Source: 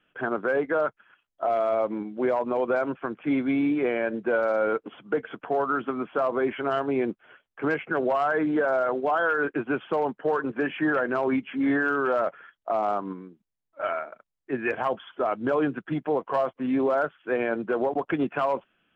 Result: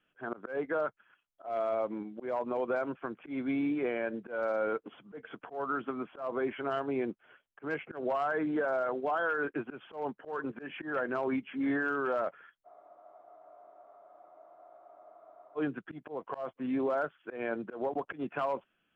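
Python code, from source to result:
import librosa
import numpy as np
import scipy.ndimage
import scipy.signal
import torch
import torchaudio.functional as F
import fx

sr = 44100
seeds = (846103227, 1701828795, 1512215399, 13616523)

y = fx.auto_swell(x, sr, attack_ms=154.0)
y = fx.spec_freeze(y, sr, seeds[0], at_s=12.68, hold_s=2.88)
y = F.gain(torch.from_numpy(y), -7.0).numpy()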